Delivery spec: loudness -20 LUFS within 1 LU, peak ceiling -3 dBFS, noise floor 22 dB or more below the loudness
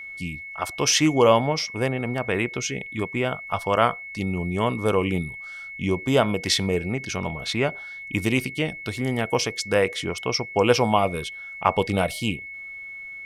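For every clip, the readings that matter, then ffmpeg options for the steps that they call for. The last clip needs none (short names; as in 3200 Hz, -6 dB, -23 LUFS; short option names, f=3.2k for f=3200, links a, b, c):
steady tone 2200 Hz; tone level -35 dBFS; loudness -24.0 LUFS; peak -3.5 dBFS; loudness target -20.0 LUFS
-> -af "bandreject=f=2.2k:w=30"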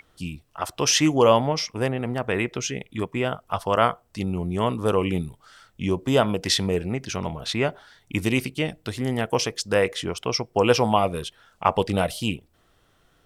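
steady tone none; loudness -24.0 LUFS; peak -4.0 dBFS; loudness target -20.0 LUFS
-> -af "volume=4dB,alimiter=limit=-3dB:level=0:latency=1"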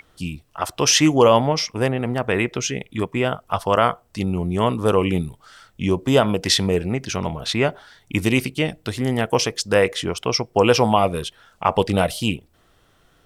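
loudness -20.5 LUFS; peak -3.0 dBFS; noise floor -59 dBFS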